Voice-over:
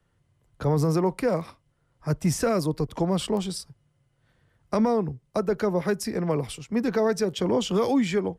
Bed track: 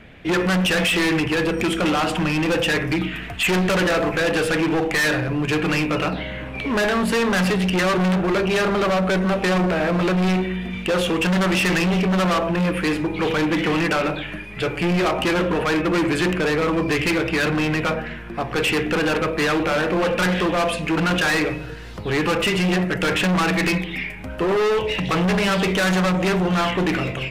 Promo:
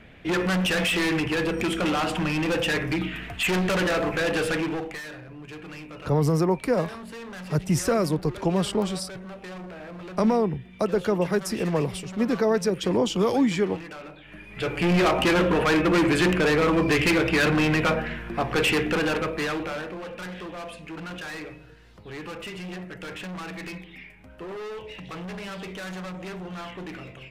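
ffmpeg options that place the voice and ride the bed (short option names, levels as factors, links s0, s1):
-filter_complex "[0:a]adelay=5450,volume=1.12[s0];[1:a]volume=5.31,afade=t=out:st=4.49:d=0.54:silence=0.177828,afade=t=in:st=14.23:d=0.73:silence=0.112202,afade=t=out:st=18.45:d=1.54:silence=0.158489[s1];[s0][s1]amix=inputs=2:normalize=0"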